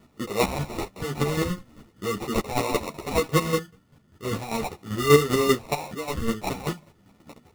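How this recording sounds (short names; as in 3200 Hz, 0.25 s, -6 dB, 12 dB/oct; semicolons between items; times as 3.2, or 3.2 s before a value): chopped level 5.1 Hz, depth 60%, duty 25%; phasing stages 6, 0.44 Hz, lowest notch 740–4800 Hz; aliases and images of a low sample rate 1600 Hz, jitter 0%; a shimmering, thickened sound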